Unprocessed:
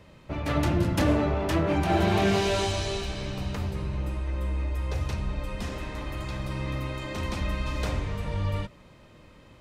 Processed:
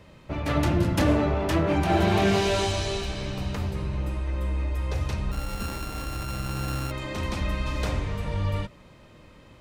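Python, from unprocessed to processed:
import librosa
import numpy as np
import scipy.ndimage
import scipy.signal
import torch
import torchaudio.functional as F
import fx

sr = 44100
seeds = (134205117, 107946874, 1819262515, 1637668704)

y = fx.sample_sort(x, sr, block=32, at=(5.31, 6.9), fade=0.02)
y = y * 10.0 ** (1.5 / 20.0)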